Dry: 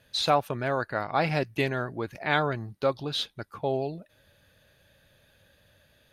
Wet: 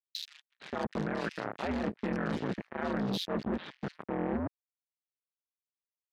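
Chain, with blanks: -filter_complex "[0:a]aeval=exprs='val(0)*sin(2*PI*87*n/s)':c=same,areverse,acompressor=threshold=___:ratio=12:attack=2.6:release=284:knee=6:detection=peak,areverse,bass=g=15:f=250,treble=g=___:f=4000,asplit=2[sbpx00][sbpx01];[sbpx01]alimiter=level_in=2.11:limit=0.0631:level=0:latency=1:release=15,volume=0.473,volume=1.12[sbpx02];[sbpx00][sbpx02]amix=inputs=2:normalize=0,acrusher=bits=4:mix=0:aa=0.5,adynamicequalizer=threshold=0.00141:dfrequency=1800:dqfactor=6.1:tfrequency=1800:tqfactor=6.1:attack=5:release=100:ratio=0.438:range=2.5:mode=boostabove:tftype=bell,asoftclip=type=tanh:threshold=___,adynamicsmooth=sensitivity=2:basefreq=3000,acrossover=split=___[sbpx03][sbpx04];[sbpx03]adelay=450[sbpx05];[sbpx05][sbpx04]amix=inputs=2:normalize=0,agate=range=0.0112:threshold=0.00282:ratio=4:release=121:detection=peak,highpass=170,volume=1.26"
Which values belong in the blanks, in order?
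0.0141, 8, 0.112, 2400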